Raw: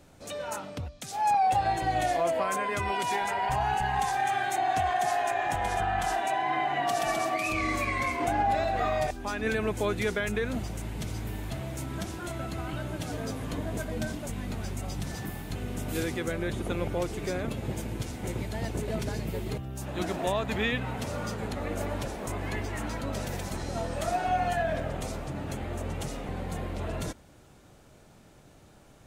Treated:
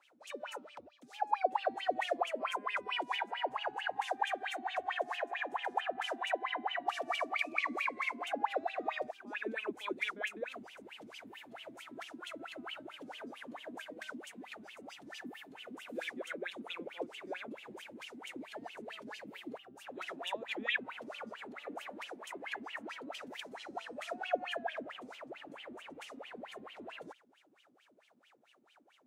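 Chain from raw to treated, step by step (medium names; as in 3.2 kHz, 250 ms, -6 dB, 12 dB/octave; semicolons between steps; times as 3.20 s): RIAA curve recording; hum notches 50/100 Hz; wah-wah 4.5 Hz 230–3100 Hz, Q 12; trim +6 dB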